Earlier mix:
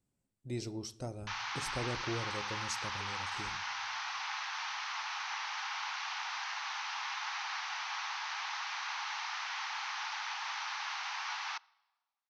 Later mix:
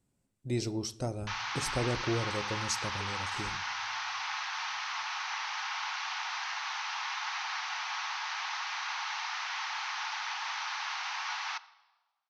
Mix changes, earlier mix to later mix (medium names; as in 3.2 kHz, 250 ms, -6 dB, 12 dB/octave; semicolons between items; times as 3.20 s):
speech +6.5 dB; background: send +11.0 dB